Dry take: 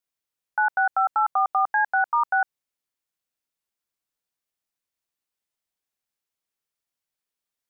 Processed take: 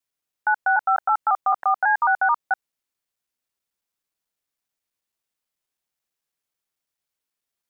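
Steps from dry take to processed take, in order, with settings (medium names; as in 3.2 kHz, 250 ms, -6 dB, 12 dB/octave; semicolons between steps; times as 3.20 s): slices played last to first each 109 ms, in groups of 2; trim +2 dB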